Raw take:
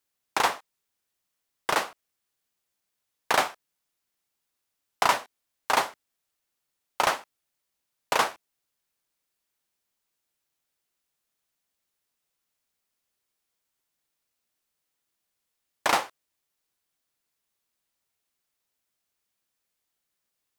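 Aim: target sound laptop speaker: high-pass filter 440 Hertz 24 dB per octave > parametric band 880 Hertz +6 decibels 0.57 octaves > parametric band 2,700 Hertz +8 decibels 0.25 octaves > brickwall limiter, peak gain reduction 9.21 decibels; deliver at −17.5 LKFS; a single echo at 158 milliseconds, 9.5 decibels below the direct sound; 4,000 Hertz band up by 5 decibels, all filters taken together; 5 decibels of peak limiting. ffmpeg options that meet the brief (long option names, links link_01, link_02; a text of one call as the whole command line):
ffmpeg -i in.wav -af "equalizer=frequency=4000:width_type=o:gain=4,alimiter=limit=-11.5dB:level=0:latency=1,highpass=frequency=440:width=0.5412,highpass=frequency=440:width=1.3066,equalizer=frequency=880:width_type=o:width=0.57:gain=6,equalizer=frequency=2700:width_type=o:width=0.25:gain=8,aecho=1:1:158:0.335,volume=12.5dB,alimiter=limit=-2dB:level=0:latency=1" out.wav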